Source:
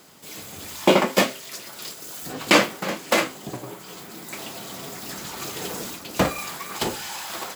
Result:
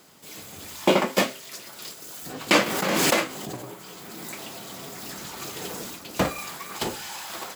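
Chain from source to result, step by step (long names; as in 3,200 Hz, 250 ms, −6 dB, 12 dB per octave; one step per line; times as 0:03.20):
0:02.66–0:05.28: background raised ahead of every attack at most 21 dB per second
level −3 dB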